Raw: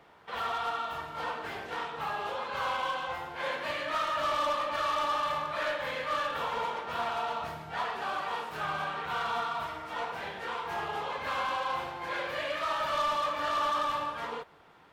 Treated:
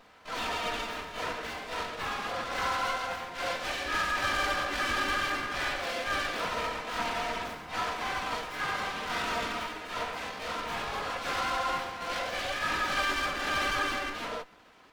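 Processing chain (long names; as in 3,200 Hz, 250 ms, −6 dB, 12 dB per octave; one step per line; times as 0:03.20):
lower of the sound and its delayed copy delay 4 ms
pitch-shifted copies added +5 semitones −1 dB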